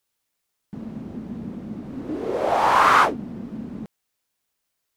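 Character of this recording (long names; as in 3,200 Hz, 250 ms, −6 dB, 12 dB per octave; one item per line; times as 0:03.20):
background noise floor −78 dBFS
spectral slope −2.5 dB per octave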